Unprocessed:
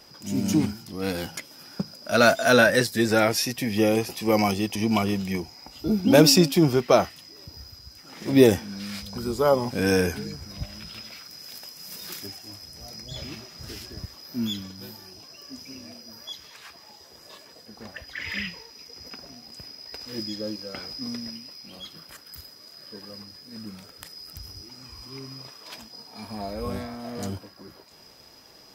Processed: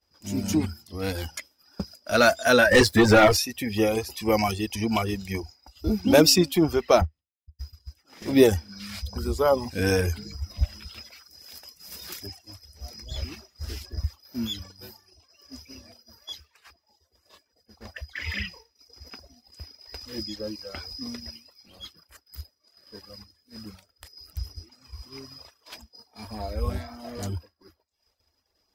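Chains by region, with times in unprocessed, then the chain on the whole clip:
0:02.71–0:03.37: low-pass filter 3,200 Hz 6 dB per octave + leveller curve on the samples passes 3 + double-tracking delay 19 ms −10.5 dB
0:07.01–0:07.59: spectral tilt −3 dB per octave + expander for the loud parts 2.5 to 1, over −38 dBFS
whole clip: downward expander −38 dBFS; reverb reduction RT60 0.77 s; low shelf with overshoot 100 Hz +8.5 dB, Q 3

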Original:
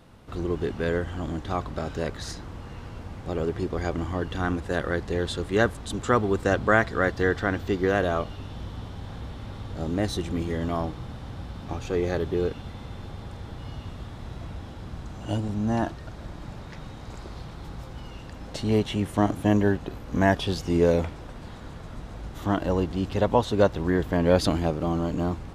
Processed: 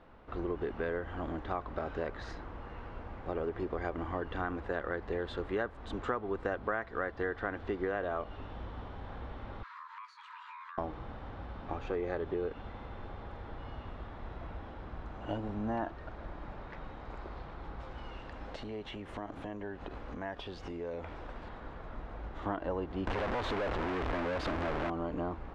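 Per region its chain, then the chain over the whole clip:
0:09.63–0:10.78: Butterworth high-pass 480 Hz 72 dB per octave + frequency shifter +480 Hz + downward compressor 16 to 1, threshold −42 dBFS
0:17.80–0:21.49: high-shelf EQ 3,200 Hz +7.5 dB + downward compressor 12 to 1, threshold −31 dBFS
0:23.07–0:24.90: sign of each sample alone + high-shelf EQ 8,200 Hz −4.5 dB
whole clip: low-pass filter 1,900 Hz 12 dB per octave; parametric band 130 Hz −12.5 dB 2.1 octaves; downward compressor 5 to 1, threshold −31 dBFS

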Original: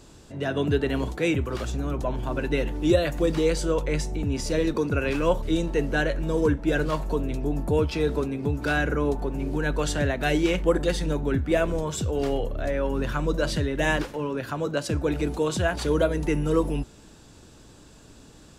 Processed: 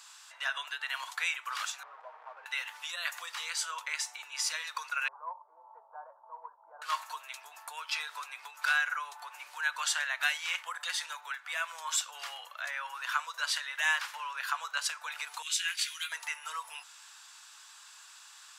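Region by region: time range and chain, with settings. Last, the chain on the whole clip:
0:01.83–0:02.46: linear delta modulator 64 kbit/s, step −25.5 dBFS + low-pass with resonance 490 Hz, resonance Q 2.3 + comb filter 6.4 ms, depth 42%
0:05.08–0:06.82: Butterworth low-pass 970 Hz 48 dB per octave + parametric band 250 Hz −14.5 dB 0.67 octaves
0:15.42–0:16.12: Chebyshev high-pass filter 2,200 Hz, order 3 + double-tracking delay 17 ms −7.5 dB
whole clip: downward compressor, threshold −24 dBFS; Butterworth high-pass 1,000 Hz 36 dB per octave; level +4 dB

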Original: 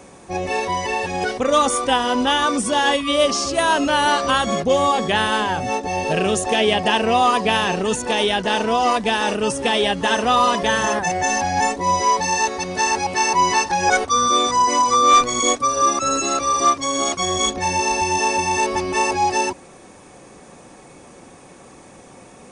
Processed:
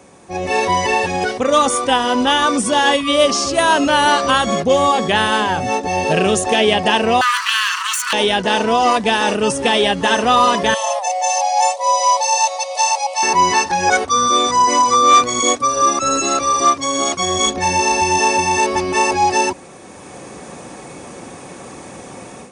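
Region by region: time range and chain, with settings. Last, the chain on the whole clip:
0:07.21–0:08.13: lower of the sound and its delayed copy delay 0.69 ms + Butterworth high-pass 1,000 Hz 96 dB per octave + envelope flattener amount 50%
0:10.74–0:13.23: linear-phase brick-wall high-pass 470 Hz + phaser with its sweep stopped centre 650 Hz, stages 4
whole clip: high-pass filter 62 Hz; automatic gain control; level −2 dB

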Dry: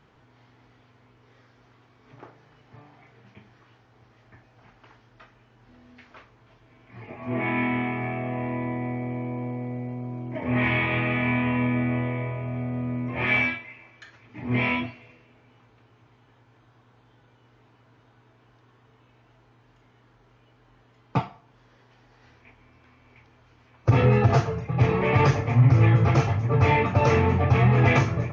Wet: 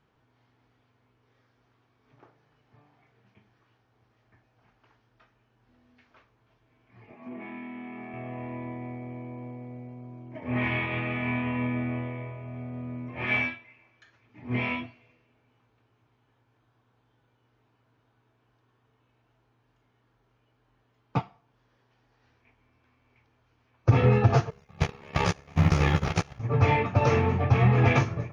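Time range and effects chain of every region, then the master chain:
0:07.13–0:08.14: low shelf with overshoot 140 Hz −10 dB, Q 3 + downward compressor 16 to 1, threshold −27 dBFS
0:24.50–0:26.38: spectral envelope flattened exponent 0.6 + noise gate −21 dBFS, range −12 dB + ring modulation 35 Hz
whole clip: notch filter 2,000 Hz, Q 30; expander for the loud parts 1.5 to 1, over −35 dBFS

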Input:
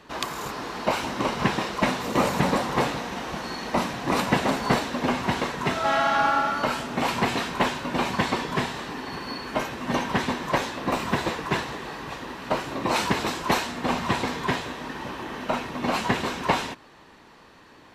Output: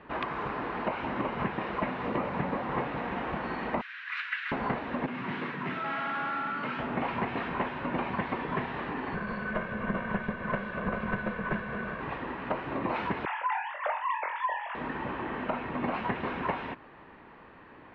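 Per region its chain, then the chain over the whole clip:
0:03.81–0:04.52: elliptic high-pass filter 1,500 Hz, stop band 60 dB + high-shelf EQ 8,600 Hz +5 dB
0:05.06–0:06.79: parametric band 660 Hz −11.5 dB 1.3 octaves + gain into a clipping stage and back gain 29 dB + high-pass filter 130 Hz 24 dB per octave
0:09.14–0:12.01: lower of the sound and its delayed copy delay 1.8 ms + high-shelf EQ 3,800 Hz −7.5 dB + hollow resonant body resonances 210/1,500 Hz, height 18 dB, ringing for 90 ms
0:13.25–0:14.75: three sine waves on the formant tracks + high-pass filter 260 Hz 24 dB per octave + flutter between parallel walls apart 3.9 metres, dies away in 0.27 s
whole clip: low-pass filter 2,500 Hz 24 dB per octave; downward compressor, threshold −28 dBFS

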